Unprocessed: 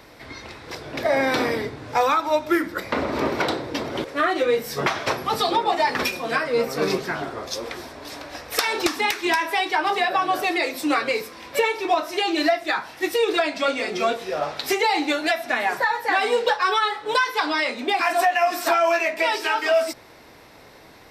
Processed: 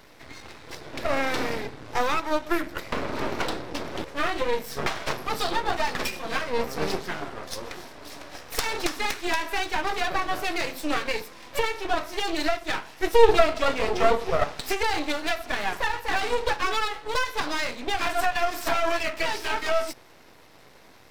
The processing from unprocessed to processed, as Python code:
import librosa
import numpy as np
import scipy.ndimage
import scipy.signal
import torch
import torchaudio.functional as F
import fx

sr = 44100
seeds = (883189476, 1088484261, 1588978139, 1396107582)

y = fx.small_body(x, sr, hz=(450.0, 640.0, 1300.0), ring_ms=45, db=13, at=(13.01, 14.44))
y = np.maximum(y, 0.0)
y = F.gain(torch.from_numpy(y), -1.0).numpy()